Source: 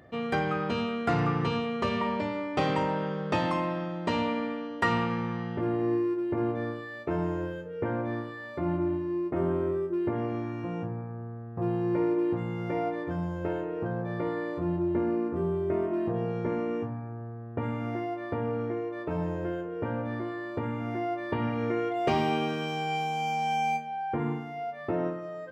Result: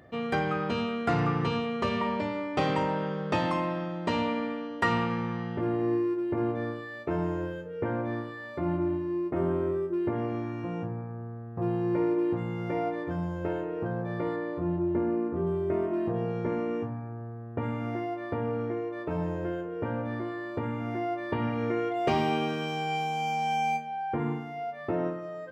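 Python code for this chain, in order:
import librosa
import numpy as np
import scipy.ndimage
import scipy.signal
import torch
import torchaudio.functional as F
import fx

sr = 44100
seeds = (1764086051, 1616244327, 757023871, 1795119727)

y = fx.high_shelf(x, sr, hz=3500.0, db=-10.5, at=(14.36, 15.47))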